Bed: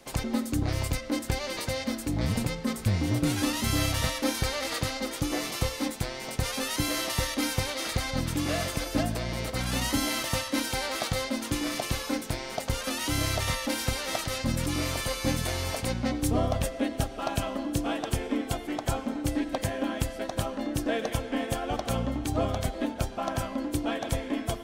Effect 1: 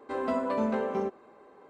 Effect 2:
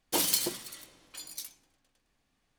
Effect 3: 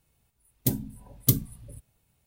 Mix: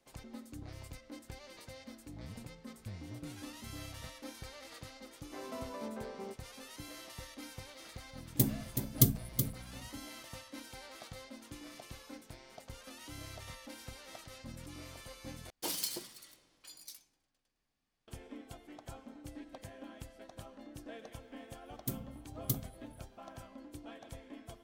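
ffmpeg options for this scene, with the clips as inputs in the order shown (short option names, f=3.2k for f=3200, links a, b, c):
-filter_complex "[3:a]asplit=2[a][b];[0:a]volume=-19.5dB[c];[a]aecho=1:1:374:0.398[d];[2:a]equalizer=f=4.9k:t=o:w=0.3:g=4[e];[c]asplit=2[f][g];[f]atrim=end=15.504[h];[e]atrim=end=2.58,asetpts=PTS-STARTPTS,volume=-10dB[i];[g]atrim=start=18.076[j];[1:a]atrim=end=1.69,asetpts=PTS-STARTPTS,volume=-14.5dB,afade=t=in:d=0.004:c=hsin,afade=t=out:st=1.686:d=0.004:c=hsin,adelay=5240[k];[d]atrim=end=2.26,asetpts=PTS-STARTPTS,volume=-3dB,afade=t=in:d=0.004:c=hsin,afade=t=out:st=2.256:d=0.004:c=hsin,adelay=7730[l];[b]atrim=end=2.26,asetpts=PTS-STARTPTS,volume=-12.5dB,afade=t=in:d=0.004:c=hsin,afade=t=out:st=2.256:d=0.004:c=hsin,adelay=21210[m];[h][i]acrossfade=d=0.004:c1=hsin:c2=hsin[n];[n][j]acrossfade=d=0.004:c1=hsin:c2=hsin[o];[o][k][l][m]amix=inputs=4:normalize=0"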